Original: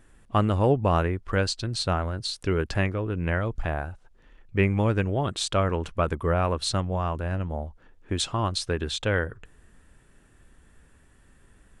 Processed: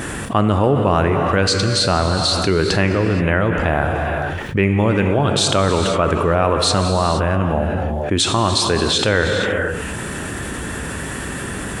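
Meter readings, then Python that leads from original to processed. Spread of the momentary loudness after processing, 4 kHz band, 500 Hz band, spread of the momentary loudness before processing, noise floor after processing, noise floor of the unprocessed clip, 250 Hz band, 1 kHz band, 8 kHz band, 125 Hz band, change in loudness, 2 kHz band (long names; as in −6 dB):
10 LU, +12.5 dB, +10.0 dB, 8 LU, −27 dBFS, −58 dBFS, +10.5 dB, +10.5 dB, +13.0 dB, +7.5 dB, +9.0 dB, +11.5 dB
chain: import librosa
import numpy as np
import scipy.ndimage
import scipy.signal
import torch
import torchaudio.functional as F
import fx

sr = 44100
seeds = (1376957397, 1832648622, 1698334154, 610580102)

y = scipy.signal.sosfilt(scipy.signal.butter(2, 100.0, 'highpass', fs=sr, output='sos'), x)
y = fx.rev_gated(y, sr, seeds[0], gate_ms=500, shape='flat', drr_db=7.0)
y = fx.env_flatten(y, sr, amount_pct=70)
y = y * 10.0 ** (4.0 / 20.0)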